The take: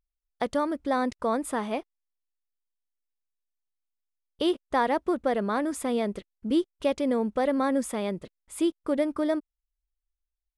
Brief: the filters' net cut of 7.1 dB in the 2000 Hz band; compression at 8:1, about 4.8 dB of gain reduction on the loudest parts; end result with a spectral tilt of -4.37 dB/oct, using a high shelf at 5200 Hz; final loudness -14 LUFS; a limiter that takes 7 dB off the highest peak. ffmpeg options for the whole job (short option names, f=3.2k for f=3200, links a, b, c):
-af "equalizer=f=2k:t=o:g=-8.5,highshelf=f=5.2k:g=-6,acompressor=threshold=-25dB:ratio=8,volume=19.5dB,alimiter=limit=-4dB:level=0:latency=1"